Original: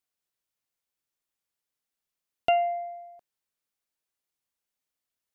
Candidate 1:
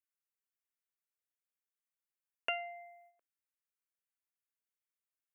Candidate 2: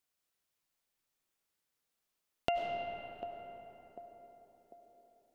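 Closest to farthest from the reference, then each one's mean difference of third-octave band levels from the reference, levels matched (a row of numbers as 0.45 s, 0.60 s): 1, 2; 2.0 dB, 14.0 dB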